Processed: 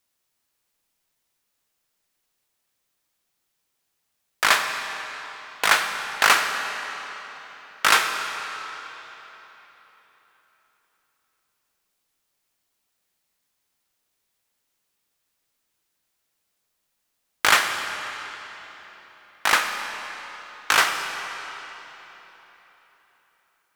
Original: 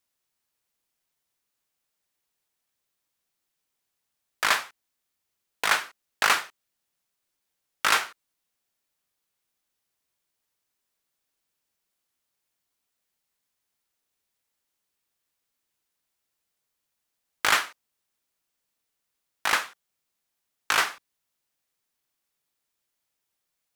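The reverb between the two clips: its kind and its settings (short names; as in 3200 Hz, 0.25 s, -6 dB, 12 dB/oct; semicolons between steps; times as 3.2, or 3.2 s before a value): digital reverb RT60 3.9 s, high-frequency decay 0.85×, pre-delay 10 ms, DRR 5.5 dB; gain +4.5 dB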